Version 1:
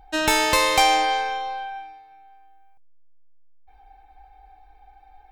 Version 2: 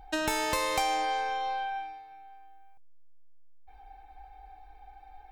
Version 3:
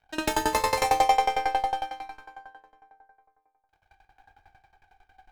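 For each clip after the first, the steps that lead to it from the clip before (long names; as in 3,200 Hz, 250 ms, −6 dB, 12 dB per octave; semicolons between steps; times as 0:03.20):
dynamic equaliser 3,200 Hz, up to −4 dB, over −33 dBFS, Q 0.77; downward compressor 3 to 1, threshold −29 dBFS, peak gain reduction 11 dB
dead-zone distortion −45.5 dBFS; dense smooth reverb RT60 2.6 s, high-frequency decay 0.6×, DRR −5.5 dB; tremolo with a ramp in dB decaying 11 Hz, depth 20 dB; level +5 dB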